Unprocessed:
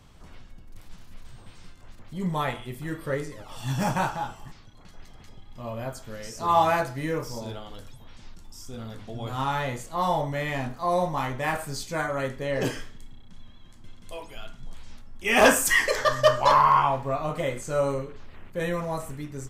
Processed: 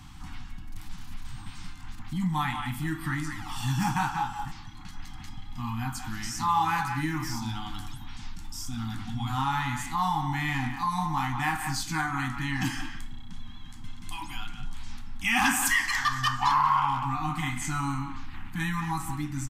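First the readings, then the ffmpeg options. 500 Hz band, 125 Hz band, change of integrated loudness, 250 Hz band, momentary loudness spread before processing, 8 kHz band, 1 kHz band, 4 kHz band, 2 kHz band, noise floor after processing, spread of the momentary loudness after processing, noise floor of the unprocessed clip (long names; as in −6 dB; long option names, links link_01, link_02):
below −20 dB, +1.5 dB, −3.0 dB, +0.5 dB, 21 LU, −1.0 dB, −2.0 dB, −0.5 dB, −1.0 dB, −42 dBFS, 21 LU, −48 dBFS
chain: -filter_complex "[0:a]afftfilt=real='re*(1-between(b*sr/4096,330,730))':imag='im*(1-between(b*sr/4096,330,730))':win_size=4096:overlap=0.75,asplit=2[link_01][link_02];[link_02]adelay=180,highpass=300,lowpass=3400,asoftclip=type=hard:threshold=-16dB,volume=-9dB[link_03];[link_01][link_03]amix=inputs=2:normalize=0,acompressor=threshold=-37dB:ratio=2,volume=7dB"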